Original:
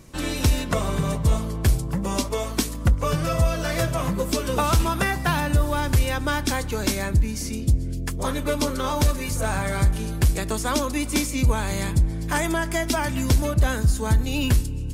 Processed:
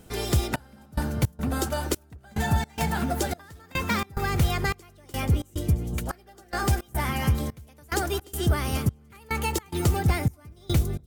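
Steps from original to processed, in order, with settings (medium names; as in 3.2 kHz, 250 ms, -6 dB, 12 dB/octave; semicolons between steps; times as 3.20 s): echo whose repeats swap between lows and highs 326 ms, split 950 Hz, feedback 55%, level -11.5 dB; trance gate "xxxx...xx." 80 bpm -24 dB; speed mistake 33 rpm record played at 45 rpm; trim -3 dB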